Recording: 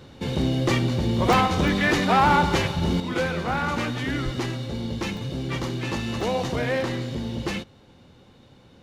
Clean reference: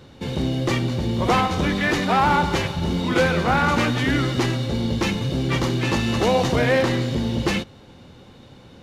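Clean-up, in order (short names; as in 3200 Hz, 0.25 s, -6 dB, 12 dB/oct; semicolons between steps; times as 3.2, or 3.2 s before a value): 4.24–4.36 HPF 140 Hz 24 dB/oct; interpolate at 1.33/1.68/5.17/6.21, 1.1 ms; gain 0 dB, from 3 s +6.5 dB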